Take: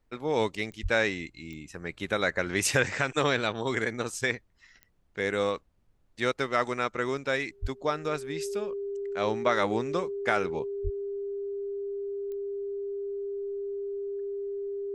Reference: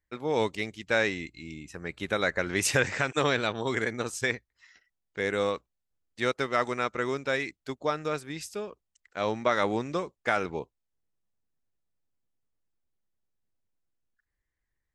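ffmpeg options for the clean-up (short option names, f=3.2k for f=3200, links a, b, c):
-filter_complex "[0:a]adeclick=t=4,bandreject=f=400:w=30,asplit=3[a][b][c];[a]afade=t=out:st=0.82:d=0.02[d];[b]highpass=f=140:w=0.5412,highpass=f=140:w=1.3066,afade=t=in:st=0.82:d=0.02,afade=t=out:st=0.94:d=0.02[e];[c]afade=t=in:st=0.94:d=0.02[f];[d][e][f]amix=inputs=3:normalize=0,asplit=3[g][h][i];[g]afade=t=out:st=7.61:d=0.02[j];[h]highpass=f=140:w=0.5412,highpass=f=140:w=1.3066,afade=t=in:st=7.61:d=0.02,afade=t=out:st=7.73:d=0.02[k];[i]afade=t=in:st=7.73:d=0.02[l];[j][k][l]amix=inputs=3:normalize=0,asplit=3[m][n][o];[m]afade=t=out:st=10.83:d=0.02[p];[n]highpass=f=140:w=0.5412,highpass=f=140:w=1.3066,afade=t=in:st=10.83:d=0.02,afade=t=out:st=10.95:d=0.02[q];[o]afade=t=in:st=10.95:d=0.02[r];[p][q][r]amix=inputs=3:normalize=0,agate=range=-21dB:threshold=-50dB"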